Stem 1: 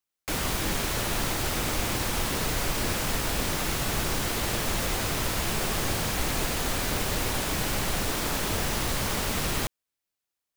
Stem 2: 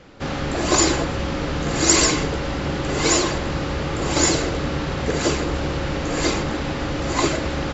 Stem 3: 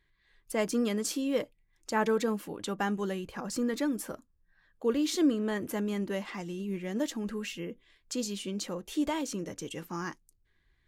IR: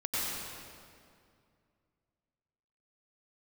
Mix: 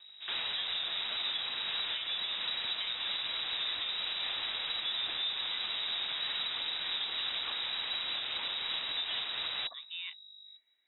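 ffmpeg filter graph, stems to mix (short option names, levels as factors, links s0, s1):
-filter_complex "[0:a]aeval=exprs='val(0)+0.00447*(sin(2*PI*50*n/s)+sin(2*PI*2*50*n/s)/2+sin(2*PI*3*50*n/s)/3+sin(2*PI*4*50*n/s)/4+sin(2*PI*5*50*n/s)/5)':c=same,volume=0.531[s0];[1:a]aemphasis=mode=reproduction:type=50kf,acrusher=bits=6:mix=0:aa=0.000001,volume=0.126[s1];[2:a]volume=0.531[s2];[s0][s1][s2]amix=inputs=3:normalize=0,lowpass=f=3300:t=q:w=0.5098,lowpass=f=3300:t=q:w=0.6013,lowpass=f=3300:t=q:w=0.9,lowpass=f=3300:t=q:w=2.563,afreqshift=-3900,alimiter=level_in=1.19:limit=0.0631:level=0:latency=1:release=285,volume=0.841"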